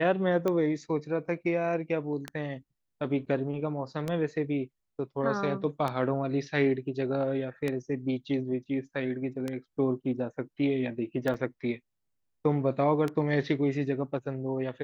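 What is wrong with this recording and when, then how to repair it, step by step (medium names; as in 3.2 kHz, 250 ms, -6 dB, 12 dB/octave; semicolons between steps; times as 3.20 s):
tick 33 1/3 rpm -17 dBFS
11.34 s: dropout 4.8 ms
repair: de-click; interpolate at 11.34 s, 4.8 ms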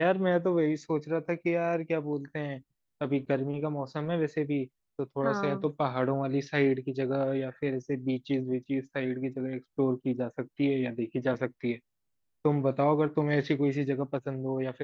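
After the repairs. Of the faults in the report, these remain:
nothing left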